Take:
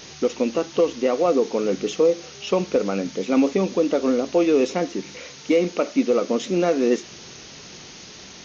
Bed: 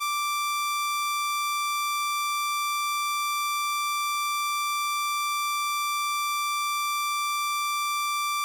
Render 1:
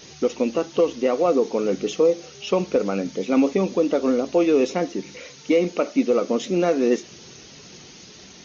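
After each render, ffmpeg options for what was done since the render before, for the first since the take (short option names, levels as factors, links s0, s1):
-af "afftdn=nr=6:nf=-42"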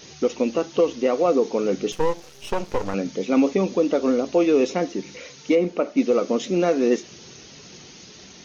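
-filter_complex "[0:a]asettb=1/sr,asplit=3[s0][s1][s2];[s0]atrim=end=1.924[s3];[s1]atrim=start=1.92:end=2.94,asetpts=PTS-STARTPTS,afade=t=in:d=0.004:c=qsin,afade=t=out:st=1.016:d=0.004:c=qsin,aeval=exprs='max(val(0),0)':c=same[s4];[s2]atrim=start=2.936[s5];[s3][s4]acrossfade=d=0.004:c1=hsin:c2=qsin[s6];[s6][s5]acrossfade=d=0.004:c1=qsin:c2=hsin,asettb=1/sr,asplit=3[s7][s8][s9];[s7]atrim=end=5.554[s10];[s8]atrim=start=5.55:end=5.97,asetpts=PTS-STARTPTS,afade=t=in:d=0.004:c=qsin,afade=t=out:st=0.416:d=0.004:c=qsin,highshelf=f=2900:g=-12[s11];[s9]atrim=start=5.966[s12];[s10][s11]acrossfade=d=0.004:c1=hsin:c2=qsin[s13];[s13][s12]acrossfade=d=0.004:c1=qsin:c2=hsin"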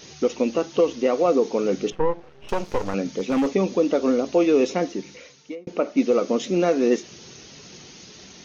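-filter_complex "[0:a]asettb=1/sr,asplit=3[s0][s1][s2];[s0]atrim=end=1.904[s3];[s1]atrim=start=1.9:end=2.49,asetpts=PTS-STARTPTS,afade=t=in:d=0.004:c=qsin,afade=t=out:st=0.586:d=0.004:c=qsin,lowpass=1700[s4];[s2]atrim=start=2.486[s5];[s3][s4]acrossfade=d=0.004:c1=hsin:c2=qsin[s6];[s6][s5]acrossfade=d=0.004:c1=qsin:c2=hsin,asettb=1/sr,asplit=3[s7][s8][s9];[s7]atrim=end=3.034[s10];[s8]atrim=start=3.03:end=3.52,asetpts=PTS-STARTPTS,afade=t=in:d=0.004:c=qsin,afade=t=out:st=0.486:d=0.004:c=qsin,volume=7.5,asoftclip=hard,volume=0.133[s11];[s9]atrim=start=3.516[s12];[s10][s11]acrossfade=d=0.004:c1=hsin:c2=qsin[s13];[s13][s12]acrossfade=d=0.004:c1=qsin:c2=hsin,asplit=2[s14][s15];[s14]atrim=end=5.67,asetpts=PTS-STARTPTS,afade=t=out:st=4.86:d=0.81[s16];[s15]atrim=start=5.67,asetpts=PTS-STARTPTS,afade=t=in:d=0.004:c=hsin[s17];[s16][s17]concat=n=2:v=0:a=1"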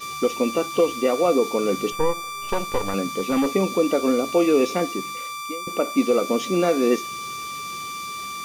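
-filter_complex "[1:a]volume=0.562[s0];[0:a][s0]amix=inputs=2:normalize=0"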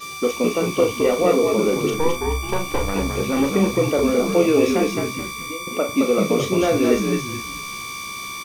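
-filter_complex "[0:a]asplit=2[s0][s1];[s1]adelay=37,volume=0.473[s2];[s0][s2]amix=inputs=2:normalize=0,asplit=5[s3][s4][s5][s6][s7];[s4]adelay=215,afreqshift=-66,volume=0.668[s8];[s5]adelay=430,afreqshift=-132,volume=0.207[s9];[s6]adelay=645,afreqshift=-198,volume=0.0646[s10];[s7]adelay=860,afreqshift=-264,volume=0.02[s11];[s3][s8][s9][s10][s11]amix=inputs=5:normalize=0"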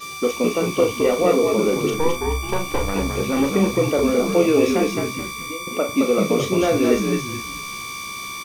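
-af anull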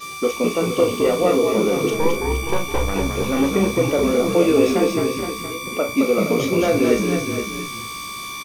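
-filter_complex "[0:a]asplit=2[s0][s1];[s1]adelay=18,volume=0.211[s2];[s0][s2]amix=inputs=2:normalize=0,aecho=1:1:469:0.335"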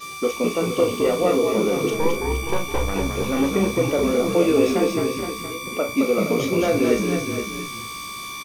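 -af "volume=0.794"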